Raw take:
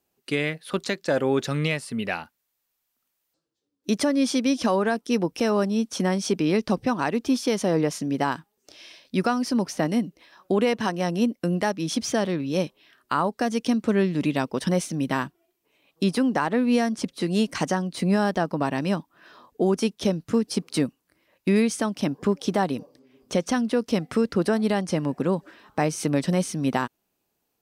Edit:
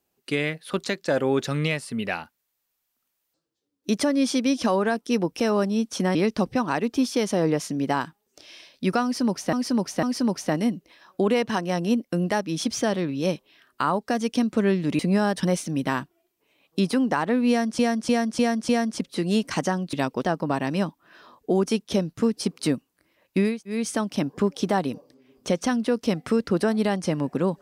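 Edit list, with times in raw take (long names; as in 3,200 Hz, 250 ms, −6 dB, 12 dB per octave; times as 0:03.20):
0:06.15–0:06.46: remove
0:09.34–0:09.84: repeat, 3 plays
0:14.30–0:14.60: swap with 0:17.97–0:18.34
0:16.73–0:17.03: repeat, 5 plays
0:21.62: splice in room tone 0.26 s, crossfade 0.24 s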